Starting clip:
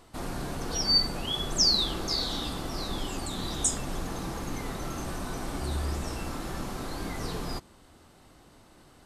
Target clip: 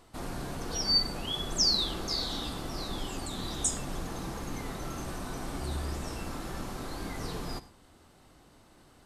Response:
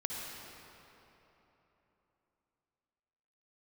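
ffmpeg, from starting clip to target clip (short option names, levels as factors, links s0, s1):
-filter_complex "[0:a]asplit=2[s0][s1];[1:a]atrim=start_sample=2205,afade=t=out:st=0.17:d=0.01,atrim=end_sample=7938[s2];[s1][s2]afir=irnorm=-1:irlink=0,volume=0.355[s3];[s0][s3]amix=inputs=2:normalize=0,volume=0.562"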